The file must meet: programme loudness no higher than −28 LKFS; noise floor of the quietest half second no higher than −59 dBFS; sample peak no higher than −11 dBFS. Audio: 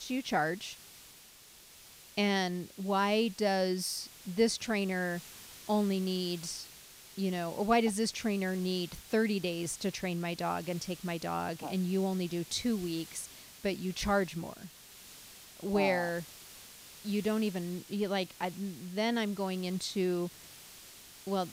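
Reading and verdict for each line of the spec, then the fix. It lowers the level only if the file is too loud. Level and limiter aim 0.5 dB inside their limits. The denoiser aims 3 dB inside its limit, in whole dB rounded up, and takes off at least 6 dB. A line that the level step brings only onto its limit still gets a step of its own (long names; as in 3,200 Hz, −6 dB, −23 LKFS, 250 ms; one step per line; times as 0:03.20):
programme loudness −33.0 LKFS: in spec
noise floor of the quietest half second −56 dBFS: out of spec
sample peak −15.0 dBFS: in spec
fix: broadband denoise 6 dB, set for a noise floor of −56 dBFS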